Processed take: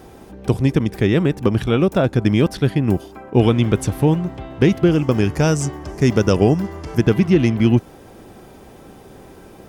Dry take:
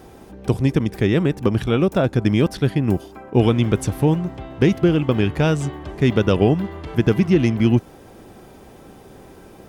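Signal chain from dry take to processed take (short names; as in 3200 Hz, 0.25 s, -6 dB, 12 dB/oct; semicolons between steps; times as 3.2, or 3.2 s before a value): 4.91–7.01 resonant high shelf 4500 Hz +6 dB, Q 3; gain +1.5 dB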